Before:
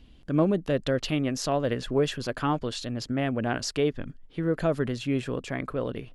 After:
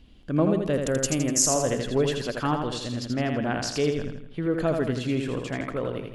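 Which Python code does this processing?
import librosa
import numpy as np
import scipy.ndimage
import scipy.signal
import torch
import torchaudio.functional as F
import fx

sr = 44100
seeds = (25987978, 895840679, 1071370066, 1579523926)

y = fx.high_shelf_res(x, sr, hz=5200.0, db=11.0, q=3.0, at=(0.73, 1.67))
y = fx.echo_feedback(y, sr, ms=82, feedback_pct=47, wet_db=-5)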